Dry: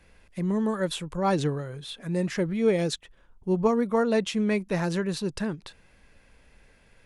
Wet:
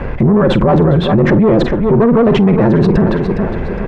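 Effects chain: granular stretch 0.55×, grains 21 ms; tube stage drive 26 dB, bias 0.4; LPF 1100 Hz 12 dB/oct; doubler 46 ms -13.5 dB; thinning echo 0.411 s, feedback 32%, high-pass 170 Hz, level -16.5 dB; maximiser +34 dB; fast leveller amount 50%; gain -3.5 dB

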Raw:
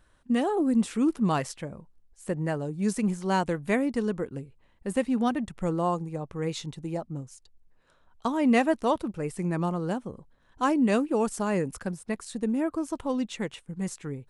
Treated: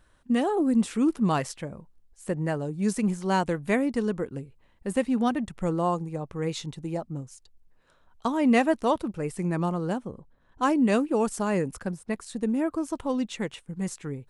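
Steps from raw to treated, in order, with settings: 9.87–12.37 mismatched tape noise reduction decoder only; gain +1 dB

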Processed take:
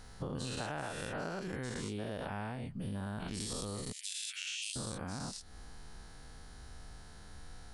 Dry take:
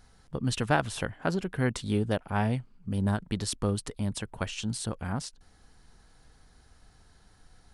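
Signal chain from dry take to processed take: spectral dilation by 0.24 s; 3.92–4.76 steep high-pass 2200 Hz 36 dB/oct; compressor 6:1, threshold -39 dBFS, peak gain reduction 22 dB; gain +1 dB

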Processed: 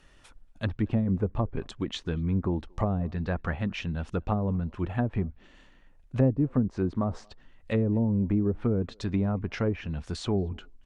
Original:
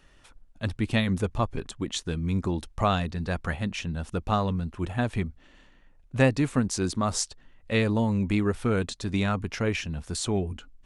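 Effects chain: treble ducked by the level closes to 440 Hz, closed at -20.5 dBFS; speakerphone echo 0.23 s, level -29 dB

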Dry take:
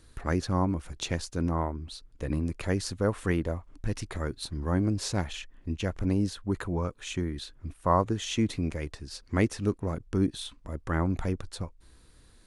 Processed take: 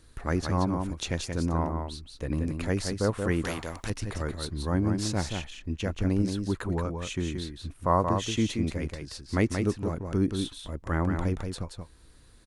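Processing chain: echo 0.178 s -5.5 dB; 3.44–3.9 spectral compressor 2:1

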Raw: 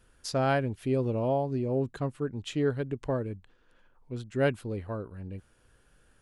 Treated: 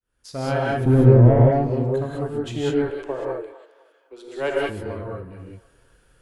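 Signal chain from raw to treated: opening faded in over 0.56 s; 0.85–1.51 tilt -4.5 dB/oct; 2.7–4.69 steep high-pass 300 Hz 72 dB/oct; added harmonics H 8 -26 dB, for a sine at -8 dBFS; band-limited delay 0.253 s, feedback 32%, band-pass 1100 Hz, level -14.5 dB; non-linear reverb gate 0.22 s rising, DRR -3.5 dB

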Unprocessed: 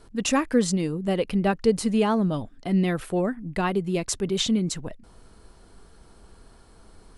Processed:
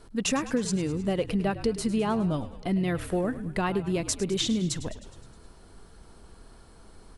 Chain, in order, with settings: compressor, threshold -23 dBFS, peak gain reduction 9 dB; frequency-shifting echo 0.104 s, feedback 63%, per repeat -49 Hz, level -14.5 dB

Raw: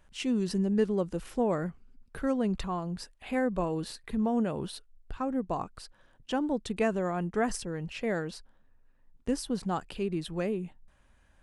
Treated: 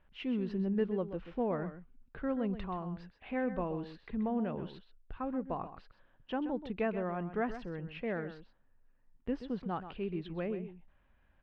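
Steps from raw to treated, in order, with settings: LPF 3100 Hz 24 dB/oct; echo 0.129 s -11.5 dB; gain -5.5 dB

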